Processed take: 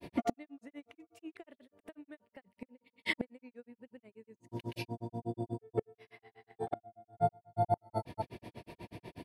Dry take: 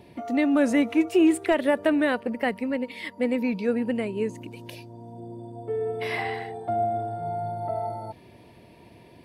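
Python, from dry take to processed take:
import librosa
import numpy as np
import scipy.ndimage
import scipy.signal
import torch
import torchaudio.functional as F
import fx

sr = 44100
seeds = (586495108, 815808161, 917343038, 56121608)

y = fx.gate_flip(x, sr, shuts_db=-23.0, range_db=-31)
y = fx.granulator(y, sr, seeds[0], grain_ms=100.0, per_s=8.2, spray_ms=100.0, spread_st=0)
y = y * librosa.db_to_amplitude(6.0)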